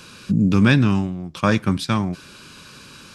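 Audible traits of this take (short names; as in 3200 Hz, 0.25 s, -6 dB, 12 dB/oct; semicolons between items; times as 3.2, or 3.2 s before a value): noise floor -44 dBFS; spectral tilt -6.0 dB/oct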